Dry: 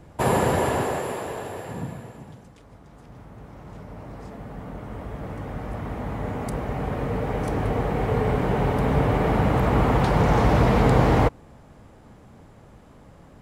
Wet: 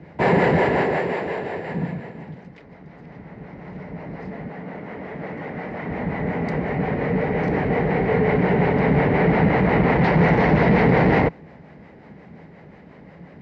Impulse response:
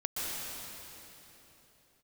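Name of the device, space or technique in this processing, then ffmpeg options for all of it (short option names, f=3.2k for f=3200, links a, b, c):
guitar amplifier with harmonic tremolo: -filter_complex "[0:a]asettb=1/sr,asplit=3[a][b][c];[a]atrim=end=4.484[d];[b]atrim=start=4.48:end=5.89,asetpts=PTS-STARTPTS,afade=t=in:d=0.004:c=qsin,afade=t=out:st=1.406:d=0.004:c=qsin,highpass=f=240:p=1[e];[c]atrim=start=5.886[f];[d][e]acrossfade=d=0.004:c1=hsin:c2=qsin[g];[g][f]acrossfade=d=0.004:c1=qsin:c2=hsin,acrossover=split=420[h][i];[h]aeval=exprs='val(0)*(1-0.5/2+0.5/2*cos(2*PI*5.6*n/s))':c=same[j];[i]aeval=exprs='val(0)*(1-0.5/2-0.5/2*cos(2*PI*5.6*n/s))':c=same[k];[j][k]amix=inputs=2:normalize=0,asoftclip=type=tanh:threshold=-17.5dB,highpass=94,equalizer=f=110:t=q:w=4:g=-9,equalizer=f=170:t=q:w=4:g=8,equalizer=f=410:t=q:w=4:g=3,equalizer=f=1.2k:t=q:w=4:g=-7,equalizer=f=2k:t=q:w=4:g=10,equalizer=f=3.4k:t=q:w=4:g=-7,lowpass=f=4.3k:w=0.5412,lowpass=f=4.3k:w=1.3066,volume=7dB"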